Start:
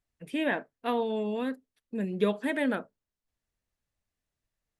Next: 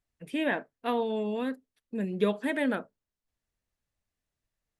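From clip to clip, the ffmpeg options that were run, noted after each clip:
ffmpeg -i in.wav -af anull out.wav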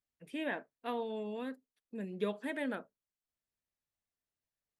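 ffmpeg -i in.wav -af "lowshelf=frequency=89:gain=-10.5,volume=-8dB" out.wav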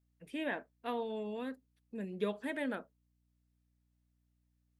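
ffmpeg -i in.wav -af "aeval=exprs='val(0)+0.000178*(sin(2*PI*60*n/s)+sin(2*PI*2*60*n/s)/2+sin(2*PI*3*60*n/s)/3+sin(2*PI*4*60*n/s)/4+sin(2*PI*5*60*n/s)/5)':channel_layout=same" out.wav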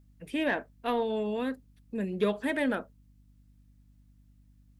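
ffmpeg -i in.wav -af "aeval=exprs='0.0841*(cos(1*acos(clip(val(0)/0.0841,-1,1)))-cos(1*PI/2))+0.00422*(cos(5*acos(clip(val(0)/0.0841,-1,1)))-cos(5*PI/2))':channel_layout=same,aeval=exprs='val(0)+0.000501*(sin(2*PI*50*n/s)+sin(2*PI*2*50*n/s)/2+sin(2*PI*3*50*n/s)/3+sin(2*PI*4*50*n/s)/4+sin(2*PI*5*50*n/s)/5)':channel_layout=same,volume=7dB" out.wav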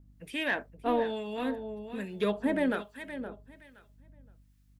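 ffmpeg -i in.wav -filter_complex "[0:a]asplit=2[link_01][link_02];[link_02]aecho=0:1:519|1038|1557:0.282|0.062|0.0136[link_03];[link_01][link_03]amix=inputs=2:normalize=0,acrossover=split=1100[link_04][link_05];[link_04]aeval=exprs='val(0)*(1-0.7/2+0.7/2*cos(2*PI*1.2*n/s))':channel_layout=same[link_06];[link_05]aeval=exprs='val(0)*(1-0.7/2-0.7/2*cos(2*PI*1.2*n/s))':channel_layout=same[link_07];[link_06][link_07]amix=inputs=2:normalize=0,volume=3dB" out.wav

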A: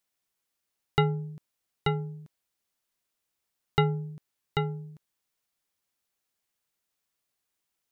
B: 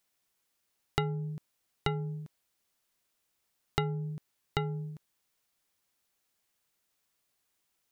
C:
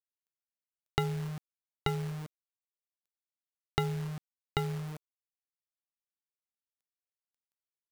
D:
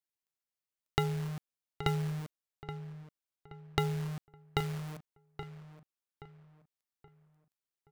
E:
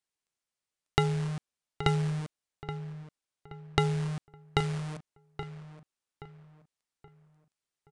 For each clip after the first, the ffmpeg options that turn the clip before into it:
ffmpeg -i in.wav -af "acompressor=threshold=-33dB:ratio=4,volume=4dB" out.wav
ffmpeg -i in.wav -af "acrusher=bits=8:dc=4:mix=0:aa=0.000001" out.wav
ffmpeg -i in.wav -filter_complex "[0:a]asplit=2[link_01][link_02];[link_02]adelay=825,lowpass=frequency=2600:poles=1,volume=-11dB,asplit=2[link_03][link_04];[link_04]adelay=825,lowpass=frequency=2600:poles=1,volume=0.38,asplit=2[link_05][link_06];[link_06]adelay=825,lowpass=frequency=2600:poles=1,volume=0.38,asplit=2[link_07][link_08];[link_08]adelay=825,lowpass=frequency=2600:poles=1,volume=0.38[link_09];[link_01][link_03][link_05][link_07][link_09]amix=inputs=5:normalize=0" out.wav
ffmpeg -i in.wav -af "aresample=22050,aresample=44100,volume=4.5dB" out.wav

